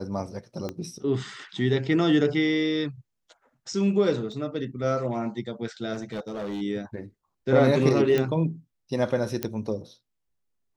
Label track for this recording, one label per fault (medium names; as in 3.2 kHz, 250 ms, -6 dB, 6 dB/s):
0.690000	0.690000	pop -19 dBFS
4.320000	4.320000	dropout 2.2 ms
5.930000	6.620000	clipped -28 dBFS
8.180000	8.180000	pop -13 dBFS
9.430000	9.430000	pop -11 dBFS